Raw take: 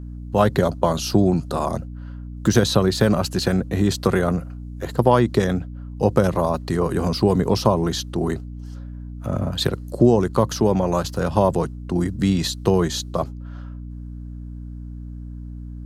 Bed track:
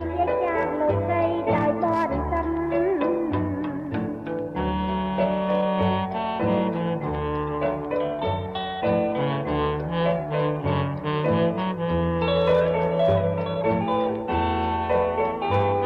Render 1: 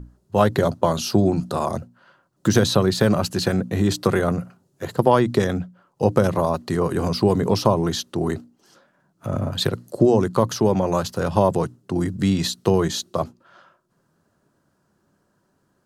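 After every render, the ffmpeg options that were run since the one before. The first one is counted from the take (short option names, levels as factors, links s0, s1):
-af "bandreject=f=60:t=h:w=6,bandreject=f=120:t=h:w=6,bandreject=f=180:t=h:w=6,bandreject=f=240:t=h:w=6,bandreject=f=300:t=h:w=6"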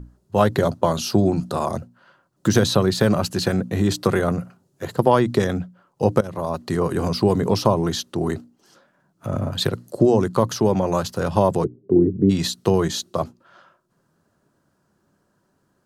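-filter_complex "[0:a]asplit=3[s0][s1][s2];[s0]afade=t=out:st=11.63:d=0.02[s3];[s1]lowpass=f=400:t=q:w=4.7,afade=t=in:st=11.63:d=0.02,afade=t=out:st=12.29:d=0.02[s4];[s2]afade=t=in:st=12.29:d=0.02[s5];[s3][s4][s5]amix=inputs=3:normalize=0,asplit=2[s6][s7];[s6]atrim=end=6.21,asetpts=PTS-STARTPTS,afade=t=out:st=6.206:d=0.004:c=hsin:silence=0.133352[s8];[s7]atrim=start=6.21,asetpts=PTS-STARTPTS,afade=t=in:d=0.48:silence=0.133352[s9];[s8][s9]concat=n=2:v=0:a=1"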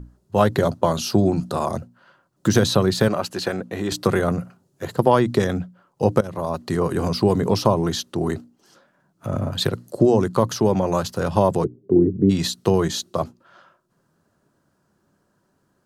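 -filter_complex "[0:a]asettb=1/sr,asplit=3[s0][s1][s2];[s0]atrim=end=3.084[s3];[s1]atrim=start=3.08:end=3.92,asetpts=PTS-STARTPTS,afade=t=in:d=0.004:c=qsin,afade=t=out:st=0.836:d=0.004:c=qsin,bass=f=250:g=-12,treble=f=4000:g=-5[s4];[s2]atrim=start=3.916[s5];[s3][s4]acrossfade=d=0.004:c1=hsin:c2=qsin[s6];[s6][s5]acrossfade=d=0.004:c1=qsin:c2=hsin"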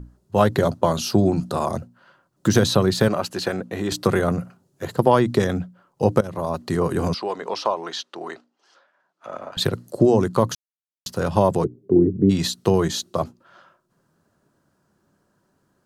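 -filter_complex "[0:a]asettb=1/sr,asplit=3[s0][s1][s2];[s0]atrim=end=7.144[s3];[s1]atrim=start=7.14:end=9.57,asetpts=PTS-STARTPTS,afade=t=in:d=0.004:c=qsin,afade=t=out:st=2.426:d=0.004:c=qsin,highpass=660,lowpass=4500[s4];[s2]atrim=start=9.566[s5];[s3][s4]acrossfade=d=0.004:c1=hsin:c2=qsin[s6];[s6][s5]acrossfade=d=0.004:c1=qsin:c2=hsin,asplit=3[s7][s8][s9];[s7]atrim=end=10.55,asetpts=PTS-STARTPTS,afade=t=out:st=10.546:d=0.004:c=hsin[s10];[s8]atrim=start=10.55:end=11.06,asetpts=PTS-STARTPTS,volume=0[s11];[s9]atrim=start=11.06,asetpts=PTS-STARTPTS,afade=t=in:d=0.004:c=hsin[s12];[s10][s11][s12]concat=n=3:v=0:a=1"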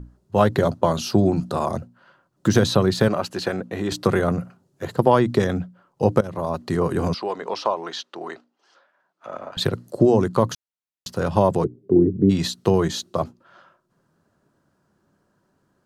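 -af "highshelf=f=6200:g=-6"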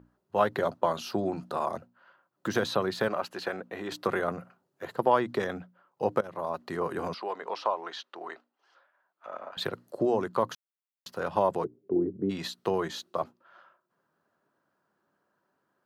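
-af "highpass=f=1100:p=1,equalizer=f=7400:t=o:w=2.3:g=-13.5"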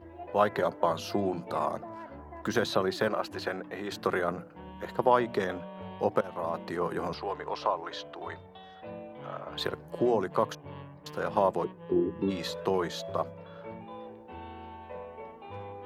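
-filter_complex "[1:a]volume=0.0944[s0];[0:a][s0]amix=inputs=2:normalize=0"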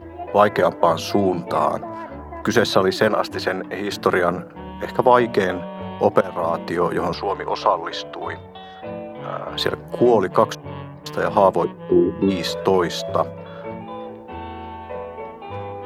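-af "volume=3.55,alimiter=limit=0.891:level=0:latency=1"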